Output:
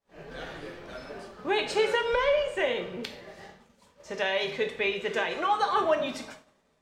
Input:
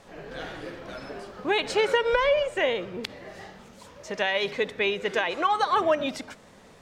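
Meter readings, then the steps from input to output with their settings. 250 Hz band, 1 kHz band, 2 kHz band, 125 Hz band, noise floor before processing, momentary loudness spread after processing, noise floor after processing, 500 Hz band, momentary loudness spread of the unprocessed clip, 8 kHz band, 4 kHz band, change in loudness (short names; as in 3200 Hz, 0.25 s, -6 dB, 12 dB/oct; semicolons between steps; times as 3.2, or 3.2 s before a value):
-3.0 dB, -2.5 dB, -2.5 dB, -2.5 dB, -52 dBFS, 17 LU, -67 dBFS, -2.0 dB, 17 LU, -2.5 dB, -2.5 dB, -2.0 dB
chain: two-slope reverb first 0.51 s, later 2.5 s, from -22 dB, DRR 3.5 dB; expander -38 dBFS; gain -4 dB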